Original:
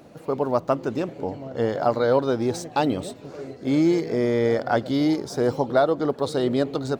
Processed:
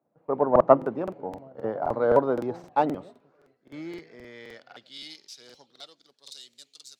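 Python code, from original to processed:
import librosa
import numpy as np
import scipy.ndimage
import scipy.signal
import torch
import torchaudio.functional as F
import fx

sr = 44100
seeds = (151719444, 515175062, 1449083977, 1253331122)

y = fx.tracing_dist(x, sr, depth_ms=0.072)
y = fx.peak_eq(y, sr, hz=150.0, db=11.0, octaves=2.5)
y = fx.rider(y, sr, range_db=4, speed_s=2.0)
y = fx.filter_sweep_bandpass(y, sr, from_hz=880.0, to_hz=6800.0, start_s=2.62, end_s=6.6, q=1.2)
y = fx.buffer_crackle(y, sr, first_s=0.51, period_s=0.26, block=2048, kind='repeat')
y = fx.band_widen(y, sr, depth_pct=100)
y = y * 10.0 ** (-4.0 / 20.0)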